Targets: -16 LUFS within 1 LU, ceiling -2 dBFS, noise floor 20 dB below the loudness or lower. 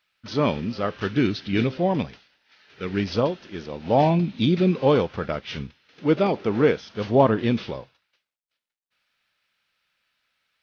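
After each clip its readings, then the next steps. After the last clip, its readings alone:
loudness -23.0 LUFS; peak level -4.5 dBFS; loudness target -16.0 LUFS
-> trim +7 dB; peak limiter -2 dBFS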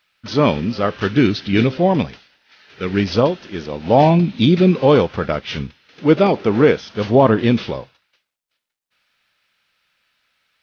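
loudness -16.5 LUFS; peak level -2.0 dBFS; noise floor -79 dBFS

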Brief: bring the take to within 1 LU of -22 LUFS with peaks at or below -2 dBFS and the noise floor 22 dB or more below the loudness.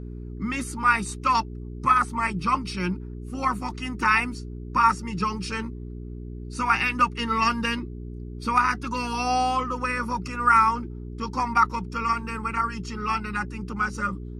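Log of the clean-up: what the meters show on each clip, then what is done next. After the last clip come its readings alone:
hum 60 Hz; highest harmonic 420 Hz; hum level -33 dBFS; loudness -25.0 LUFS; peak level -7.0 dBFS; loudness target -22.0 LUFS
-> de-hum 60 Hz, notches 7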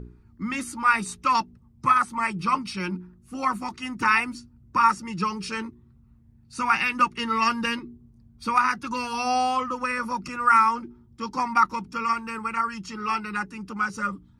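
hum not found; loudness -25.0 LUFS; peak level -7.0 dBFS; loudness target -22.0 LUFS
-> trim +3 dB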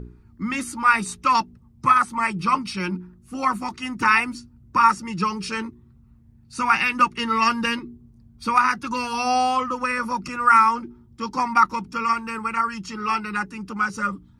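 loudness -22.0 LUFS; peak level -4.0 dBFS; noise floor -53 dBFS

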